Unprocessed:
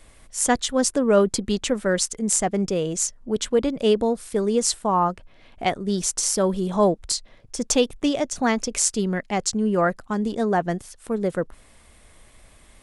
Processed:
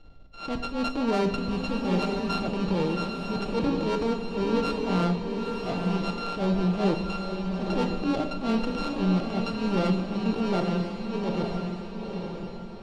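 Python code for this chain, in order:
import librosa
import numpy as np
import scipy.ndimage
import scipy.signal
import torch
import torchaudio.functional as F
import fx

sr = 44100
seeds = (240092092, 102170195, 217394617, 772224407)

p1 = np.r_[np.sort(x[:len(x) // 32 * 32].reshape(-1, 32), axis=1).ravel(), x[len(x) // 32 * 32:]]
p2 = scipy.signal.sosfilt(scipy.signal.butter(4, 4000.0, 'lowpass', fs=sr, output='sos'), p1)
p3 = fx.peak_eq(p2, sr, hz=1700.0, db=-13.5, octaves=1.5)
p4 = fx.transient(p3, sr, attack_db=-11, sustain_db=3)
p5 = 10.0 ** (-19.5 / 20.0) * np.tanh(p4 / 10.0 ** (-19.5 / 20.0))
p6 = p5 + fx.echo_diffused(p5, sr, ms=936, feedback_pct=40, wet_db=-4, dry=0)
y = fx.room_shoebox(p6, sr, seeds[0], volume_m3=330.0, walls='mixed', distance_m=0.54)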